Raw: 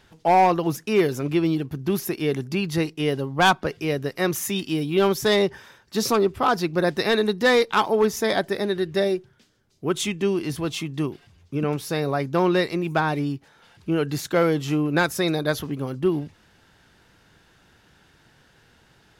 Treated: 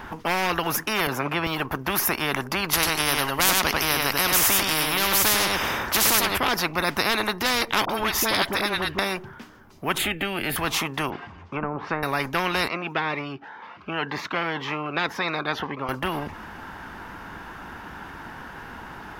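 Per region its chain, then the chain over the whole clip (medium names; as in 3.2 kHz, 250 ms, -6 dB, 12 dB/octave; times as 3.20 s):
1.07–1.47 s: high-pass 120 Hz 24 dB/octave + tilt EQ -2.5 dB/octave
2.73–6.38 s: delay 96 ms -6.5 dB + spectrum-flattening compressor 2:1
7.85–8.99 s: peaking EQ 3.5 kHz +6 dB 0.89 oct + phase dispersion highs, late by 44 ms, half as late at 820 Hz
9.98–10.56 s: static phaser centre 2.5 kHz, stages 4 + three bands compressed up and down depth 40%
11.10–12.03 s: high-pass 160 Hz 6 dB/octave + low-pass that closes with the level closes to 390 Hz, closed at -20 dBFS + distance through air 120 m
12.68–15.89 s: high-pass 710 Hz 6 dB/octave + distance through air 240 m + Shepard-style phaser rising 1.9 Hz
whole clip: graphic EQ 125/250/500/1000/4000/8000 Hz -7/+4/-5/+10/-9/-11 dB; spectrum-flattening compressor 4:1; trim +1 dB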